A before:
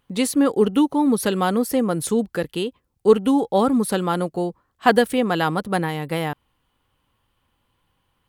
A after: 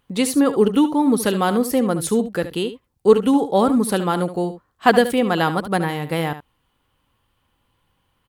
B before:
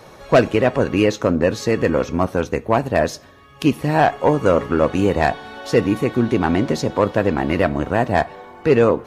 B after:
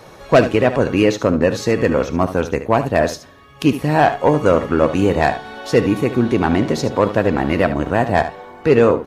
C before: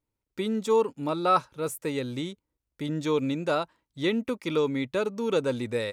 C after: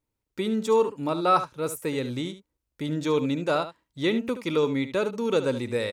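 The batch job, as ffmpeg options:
-af "aecho=1:1:73:0.251,volume=1.5dB"

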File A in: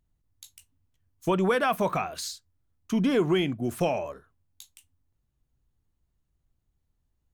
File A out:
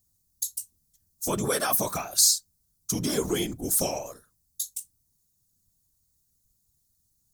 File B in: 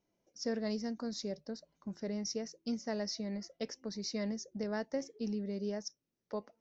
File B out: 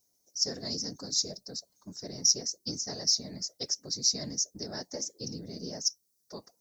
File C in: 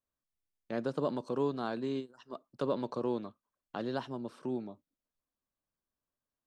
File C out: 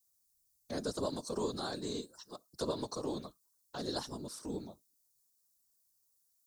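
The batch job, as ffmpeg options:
-af "aexciter=amount=8:drive=8.3:freq=4.2k,afftfilt=real='hypot(re,im)*cos(2*PI*random(0))':imag='hypot(re,im)*sin(2*PI*random(1))':win_size=512:overlap=0.75,volume=2dB"

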